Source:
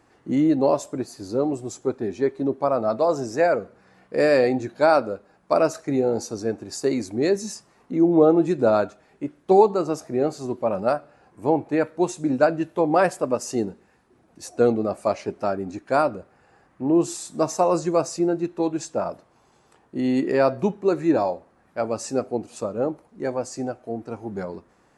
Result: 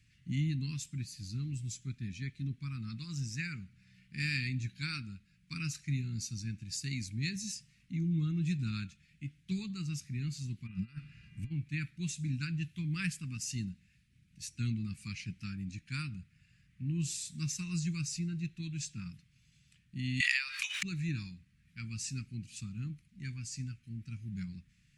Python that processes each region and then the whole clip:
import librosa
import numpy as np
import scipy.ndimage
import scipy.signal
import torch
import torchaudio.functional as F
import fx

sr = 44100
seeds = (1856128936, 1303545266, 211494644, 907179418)

y = fx.high_shelf(x, sr, hz=4600.0, db=-9.0, at=(10.66, 11.5), fade=0.02)
y = fx.over_compress(y, sr, threshold_db=-33.0, ratio=-1.0, at=(10.66, 11.5), fade=0.02)
y = fx.dmg_buzz(y, sr, base_hz=400.0, harmonics=7, level_db=-51.0, tilt_db=-7, odd_only=False, at=(10.66, 11.5), fade=0.02)
y = fx.chain(y, sr, fx.steep_highpass(hz=750.0, slope=36),
    fx.env_flatten(amount_pct=100), at=(20.2, 20.83))
y = scipy.signal.sosfilt(scipy.signal.cheby1(3, 1.0, [160.0, 2400.0], 'bandstop', fs=sr, output='sos'), y)
y = fx.high_shelf(y, sr, hz=5100.0, db=-9.5)
y = F.gain(torch.from_numpy(y), 1.5).numpy()